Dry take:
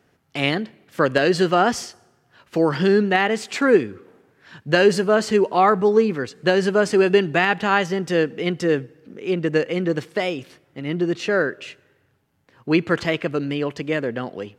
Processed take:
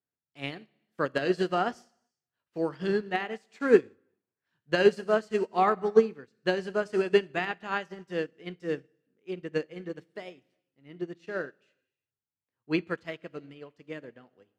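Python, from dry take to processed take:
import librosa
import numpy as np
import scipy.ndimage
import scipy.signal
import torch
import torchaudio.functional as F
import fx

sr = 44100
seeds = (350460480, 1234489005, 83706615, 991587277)

y = fx.rev_gated(x, sr, seeds[0], gate_ms=420, shape='falling', drr_db=10.5)
y = fx.upward_expand(y, sr, threshold_db=-32.0, expansion=2.5)
y = F.gain(torch.from_numpy(y), -2.5).numpy()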